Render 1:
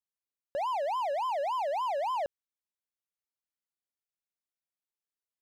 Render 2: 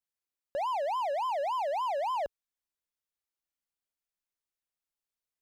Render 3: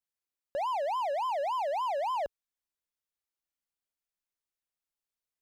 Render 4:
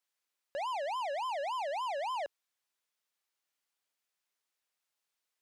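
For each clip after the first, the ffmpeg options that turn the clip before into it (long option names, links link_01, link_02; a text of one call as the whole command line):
ffmpeg -i in.wav -af "asubboost=boost=2.5:cutoff=74" out.wav
ffmpeg -i in.wav -af anull out.wav
ffmpeg -i in.wav -filter_complex "[0:a]asplit=2[link_01][link_02];[link_02]highpass=frequency=720:poles=1,volume=20dB,asoftclip=type=tanh:threshold=-26dB[link_03];[link_01][link_03]amix=inputs=2:normalize=0,lowpass=frequency=7000:poles=1,volume=-6dB,volume=-6dB" out.wav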